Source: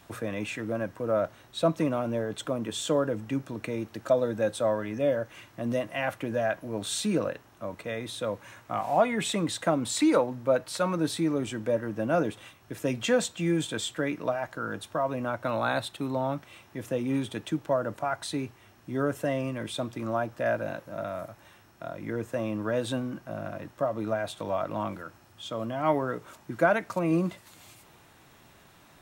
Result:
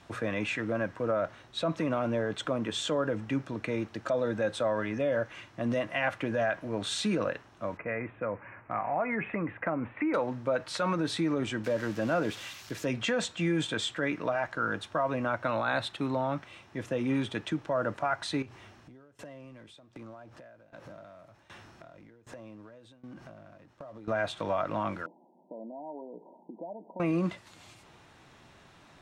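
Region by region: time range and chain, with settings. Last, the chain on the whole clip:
7.77–10.14 s: steep low-pass 2.5 kHz 72 dB/octave + compression 2.5:1, threshold -30 dBFS
11.64–12.86 s: zero-crossing glitches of -30 dBFS + dynamic bell 9.4 kHz, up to -8 dB, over -53 dBFS, Q 1.5
18.42–24.08 s: companding laws mixed up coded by mu + compression 12:1, threshold -41 dBFS + tremolo saw down 1.3 Hz, depth 90%
25.06–27.00 s: compression, threshold -38 dBFS + brick-wall FIR band-pass 170–1000 Hz
whole clip: peak limiter -21.5 dBFS; low-pass 6.4 kHz 12 dB/octave; dynamic bell 1.7 kHz, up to +5 dB, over -47 dBFS, Q 0.8

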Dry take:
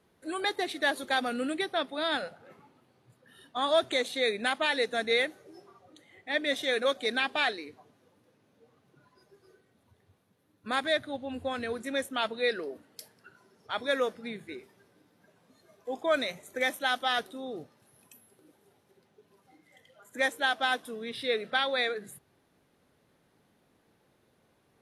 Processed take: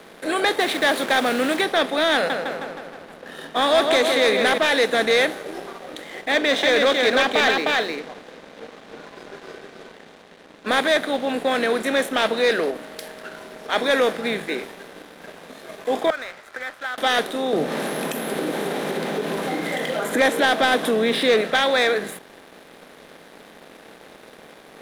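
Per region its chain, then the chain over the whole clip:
0.60–1.61 s: send-on-delta sampling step -45 dBFS + peaking EQ 460 Hz -4 dB 0.44 oct
2.14–4.58 s: filtered feedback delay 157 ms, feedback 55%, low-pass 4 kHz, level -8.5 dB + tape noise reduction on one side only decoder only
6.32–10.68 s: low-pass 6.9 kHz 24 dB/octave + delay 308 ms -4.5 dB
12.70–13.71 s: compression 1.5:1, threshold -54 dBFS + whistle 630 Hz -65 dBFS
16.10–16.98 s: compression 2:1, threshold -40 dBFS + band-pass filter 1.4 kHz, Q 4.6 + tape noise reduction on one side only encoder only
17.53–21.41 s: upward compressor, threshold -31 dBFS + bass shelf 430 Hz +11 dB
whole clip: spectral levelling over time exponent 0.6; elliptic high-pass 160 Hz; waveshaping leveller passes 2

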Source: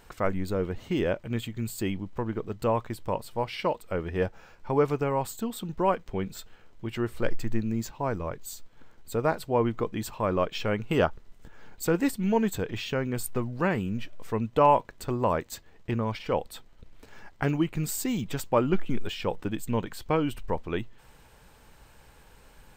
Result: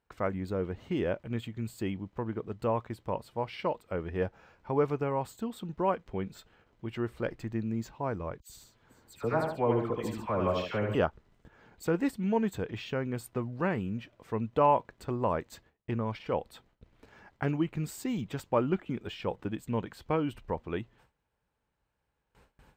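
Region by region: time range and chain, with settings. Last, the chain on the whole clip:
8.40–10.95 s: phase dispersion lows, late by 97 ms, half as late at 1.7 kHz + multi-tap echo 75/141/441 ms -4.5/-10/-18.5 dB
whole clip: gate with hold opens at -42 dBFS; high-pass 43 Hz; treble shelf 4.6 kHz -11 dB; trim -3.5 dB

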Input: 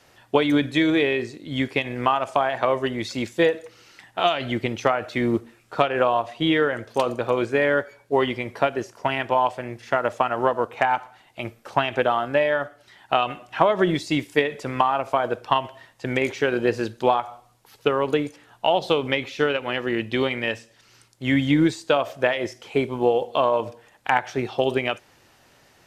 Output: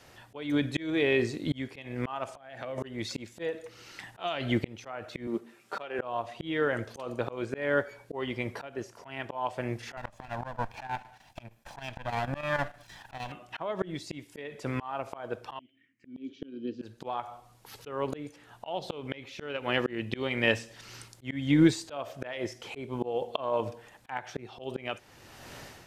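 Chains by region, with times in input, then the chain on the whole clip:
2.37–2.78 s: peaking EQ 1 kHz -13.5 dB 0.44 oct + band-stop 390 Hz, Q 8.3 + compression 8:1, threshold -31 dBFS
5.27–5.99 s: high-pass 220 Hz + comb 5.1 ms, depth 32%
9.97–13.32 s: comb filter that takes the minimum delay 1.2 ms + square tremolo 6.5 Hz, depth 60%, duty 85%
15.59–16.82 s: touch-sensitive phaser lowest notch 520 Hz, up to 2.1 kHz, full sweep at -26.5 dBFS + vowel filter i
whole clip: bass shelf 190 Hz +4 dB; level rider; slow attack 757 ms

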